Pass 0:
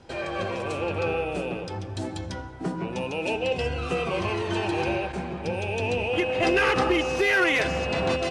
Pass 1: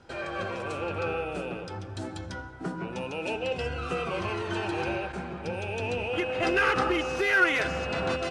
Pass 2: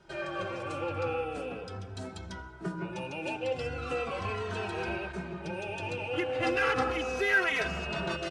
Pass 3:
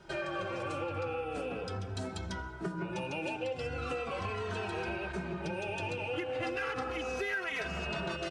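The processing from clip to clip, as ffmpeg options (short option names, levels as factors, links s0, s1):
-af "equalizer=f=1400:t=o:w=0.38:g=8.5,volume=0.596"
-filter_complex "[0:a]asplit=2[s0][s1];[s1]adelay=2.8,afreqshift=-0.37[s2];[s0][s2]amix=inputs=2:normalize=1"
-af "acompressor=threshold=0.0141:ratio=6,volume=1.58"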